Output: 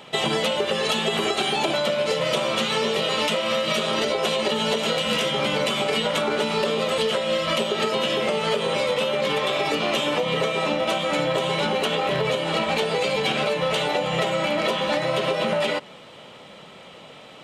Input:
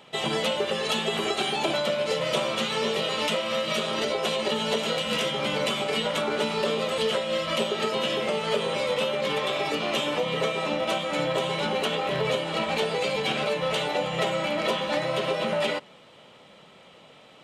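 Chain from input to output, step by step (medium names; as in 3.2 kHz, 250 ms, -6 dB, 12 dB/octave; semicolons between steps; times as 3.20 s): compression, threshold -27 dBFS, peak gain reduction 7 dB; trim +7.5 dB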